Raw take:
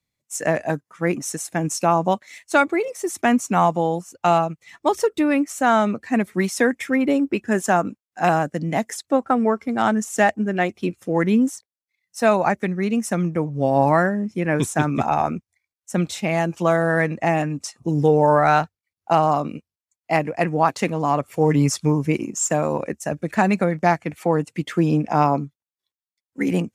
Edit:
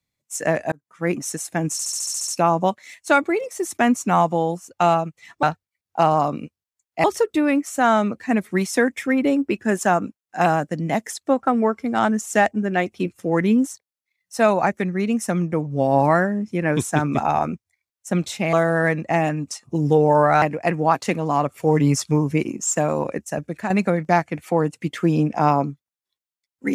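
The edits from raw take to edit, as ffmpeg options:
-filter_complex "[0:a]asplit=15[a][b][c][d][e][f][g][h][i][j][k][l][m][n][o];[a]atrim=end=0.72,asetpts=PTS-STARTPTS,afade=t=out:st=0.716:d=0.004:c=hsin[p];[b]atrim=start=0.72:end=1.792,asetpts=PTS-STARTPTS,afade=t=in:d=0.4[q];[c]atrim=start=1.718:end=1.792[r];[d]atrim=start=1.718:end=1.792[s];[e]atrim=start=1.718:end=1.792[t];[f]atrim=start=1.718:end=1.792[u];[g]atrim=start=1.718:end=1.792[v];[h]atrim=start=1.718:end=1.792[w];[i]atrim=start=1.718:end=1.792[x];[j]atrim=start=1.718:end=4.872[y];[k]atrim=start=18.548:end=20.162[z];[l]atrim=start=4.868:end=16.362[aa];[m]atrim=start=16.658:end=18.552[ab];[n]atrim=start=20.158:end=23.44,asetpts=PTS-STARTPTS,afade=t=out:st=2.762:d=0.52:c=qsin:silence=0.316228[ac];[o]atrim=start=23.44,asetpts=PTS-STARTPTS,afade=t=in:d=0.004:c=hsin:silence=0.316228[ad];[p][q]concat=n=2:v=0:a=1[ae];[ae][r]acrossfade=d=0.004:c1=hsin:c2=hsin[af];[af][s]acrossfade=d=0.004:c1=hsin:c2=hsin[ag];[ag][t]acrossfade=d=0.004:c1=hsin:c2=hsin[ah];[ah][u]acrossfade=d=0.004:c1=hsin:c2=hsin[ai];[ai][v]acrossfade=d=0.004:c1=hsin:c2=hsin[aj];[aj][w]acrossfade=d=0.004:c1=hsin:c2=hsin[ak];[ak][x]acrossfade=d=0.004:c1=hsin:c2=hsin[al];[al][y]acrossfade=d=0.004:c1=hsin:c2=hsin[am];[am][z]acrossfade=d=0.004:c1=hsin:c2=hsin[an];[an][aa]acrossfade=d=0.004:c1=hsin:c2=hsin[ao];[ao][ab]acrossfade=d=0.004:c1=hsin:c2=hsin[ap];[ac][ad]concat=n=2:v=0:a=1[aq];[ap][aq]acrossfade=d=0.004:c1=hsin:c2=hsin"

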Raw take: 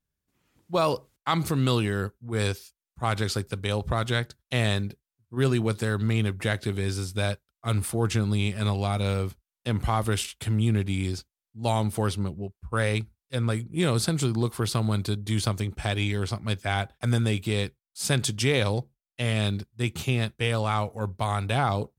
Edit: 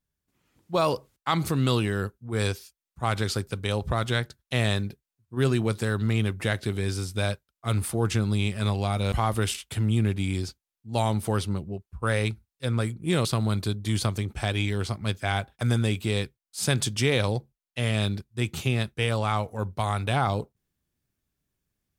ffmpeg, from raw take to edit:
-filter_complex "[0:a]asplit=3[a][b][c];[a]atrim=end=9.122[d];[b]atrim=start=9.818:end=13.952[e];[c]atrim=start=14.668[f];[d][e]acrossfade=d=0.004:c1=hsin:c2=hsin[g];[g][f]acrossfade=d=0.004:c1=hsin:c2=hsin"

